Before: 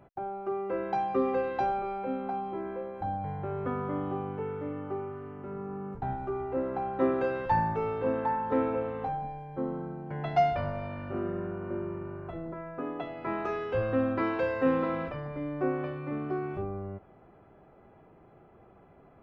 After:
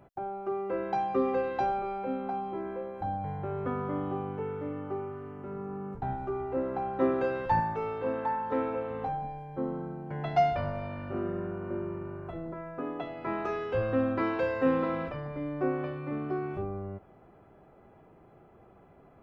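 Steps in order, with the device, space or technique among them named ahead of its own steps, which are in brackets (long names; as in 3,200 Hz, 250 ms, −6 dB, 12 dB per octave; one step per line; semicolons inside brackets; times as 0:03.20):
0:07.60–0:08.90: low-shelf EQ 410 Hz −5.5 dB
exciter from parts (in parallel at −10.5 dB: high-pass filter 3,000 Hz 12 dB per octave + soft clipping −39 dBFS, distortion −21 dB)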